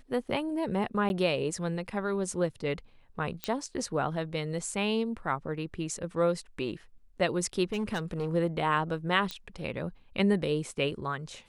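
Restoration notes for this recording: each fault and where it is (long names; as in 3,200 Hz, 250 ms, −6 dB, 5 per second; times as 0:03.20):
0:01.09–0:01.10: drop-out 11 ms
0:03.44: click −15 dBFS
0:07.72–0:08.29: clipping −27 dBFS
0:09.31: click −19 dBFS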